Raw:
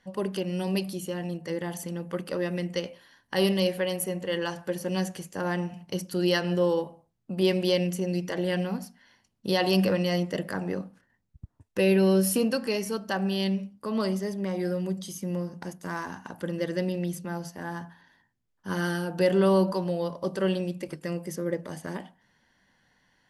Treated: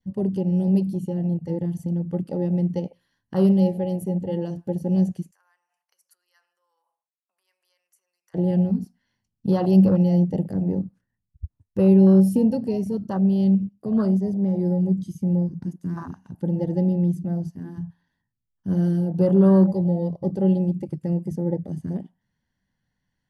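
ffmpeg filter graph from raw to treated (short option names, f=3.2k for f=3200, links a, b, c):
-filter_complex "[0:a]asettb=1/sr,asplit=3[a][b][c];[a]atrim=end=5.314[d];[b]atrim=start=5.31:end=8.34,asetpts=PTS-STARTPTS,afade=t=in:d=0.004:c=qsin,afade=t=out:st=3.026:d=0.004:c=qsin,equalizer=f=3.4k:w=1.2:g=-13.5,acompressor=threshold=-37dB:ratio=8:attack=3.2:release=140:knee=1:detection=peak,highpass=f=1k:w=0.5412,highpass=f=1k:w=1.3066[e];[c]atrim=start=8.336[f];[d][e]acrossfade=d=0.004:c1=hsin:c2=qsin[g];[g][f]acrossfade=d=0.004:c1=qsin:c2=hsin,adynamicequalizer=threshold=0.00398:dfrequency=1500:dqfactor=1.6:tfrequency=1500:tqfactor=1.6:attack=5:release=100:ratio=0.375:range=4:mode=cutabove:tftype=bell,afwtdn=0.0355,bass=f=250:g=14,treble=f=4k:g=3"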